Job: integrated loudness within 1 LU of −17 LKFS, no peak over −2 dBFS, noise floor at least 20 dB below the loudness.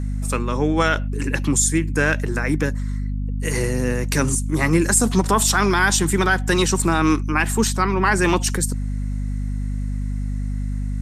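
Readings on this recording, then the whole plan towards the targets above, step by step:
mains hum 50 Hz; hum harmonics up to 250 Hz; level of the hum −21 dBFS; integrated loudness −20.5 LKFS; sample peak −3.5 dBFS; target loudness −17.0 LKFS
→ mains-hum notches 50/100/150/200/250 Hz
level +3.5 dB
brickwall limiter −2 dBFS

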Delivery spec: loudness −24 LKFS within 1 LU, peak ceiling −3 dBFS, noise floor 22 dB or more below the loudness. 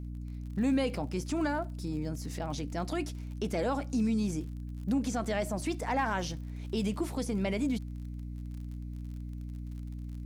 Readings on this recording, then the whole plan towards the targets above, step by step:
crackle rate 44 per second; mains hum 60 Hz; hum harmonics up to 300 Hz; level of the hum −37 dBFS; integrated loudness −34.0 LKFS; sample peak −19.0 dBFS; target loudness −24.0 LKFS
→ click removal
mains-hum notches 60/120/180/240/300 Hz
level +10 dB

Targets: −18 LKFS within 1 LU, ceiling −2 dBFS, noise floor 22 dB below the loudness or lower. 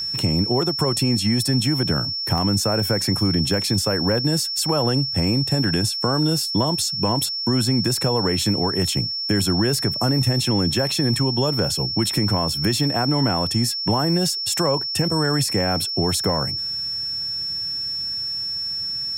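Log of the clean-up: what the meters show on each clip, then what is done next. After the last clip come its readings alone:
number of dropouts 2; longest dropout 1.2 ms; interfering tone 5,400 Hz; level of the tone −24 dBFS; integrated loudness −20.5 LKFS; sample peak −9.5 dBFS; target loudness −18.0 LKFS
→ repair the gap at 0:02.38/0:07.85, 1.2 ms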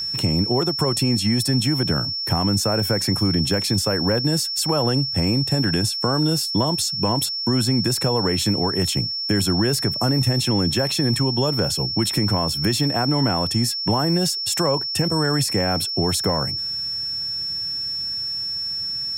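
number of dropouts 0; interfering tone 5,400 Hz; level of the tone −24 dBFS
→ notch filter 5,400 Hz, Q 30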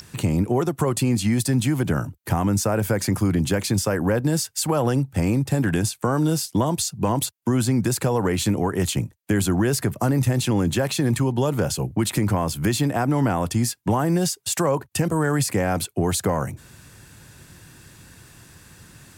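interfering tone none found; integrated loudness −22.5 LKFS; sample peak −11.0 dBFS; target loudness −18.0 LKFS
→ level +4.5 dB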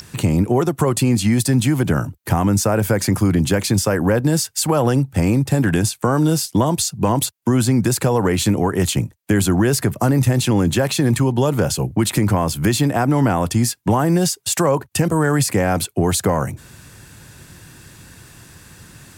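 integrated loudness −18.0 LKFS; sample peak −6.5 dBFS; background noise floor −49 dBFS

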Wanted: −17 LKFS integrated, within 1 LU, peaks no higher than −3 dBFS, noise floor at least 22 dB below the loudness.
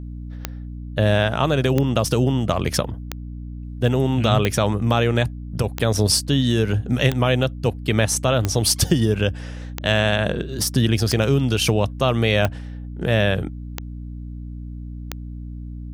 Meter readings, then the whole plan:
number of clicks 12; mains hum 60 Hz; hum harmonics up to 300 Hz; level of the hum −31 dBFS; integrated loudness −20.5 LKFS; sample peak −2.0 dBFS; target loudness −17.0 LKFS
→ click removal
mains-hum notches 60/120/180/240/300 Hz
level +3.5 dB
brickwall limiter −3 dBFS

